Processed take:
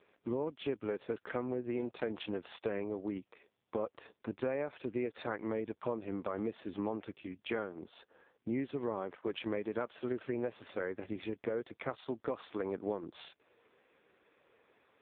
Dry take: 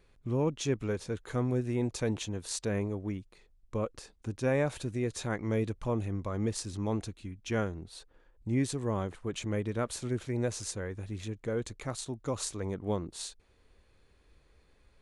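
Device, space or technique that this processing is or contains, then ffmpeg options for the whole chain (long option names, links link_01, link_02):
voicemail: -af "highpass=320,lowpass=3200,acompressor=threshold=-39dB:ratio=8,volume=7.5dB" -ar 8000 -c:a libopencore_amrnb -b:a 5150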